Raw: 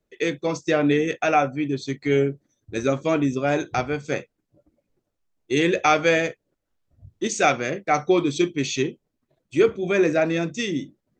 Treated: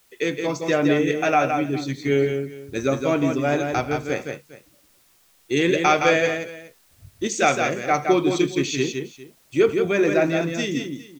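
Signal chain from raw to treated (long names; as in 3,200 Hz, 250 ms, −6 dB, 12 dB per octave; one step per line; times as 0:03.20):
bit-depth reduction 10 bits, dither triangular
multi-tap delay 82/167/408 ms −20/−5.5/−19 dB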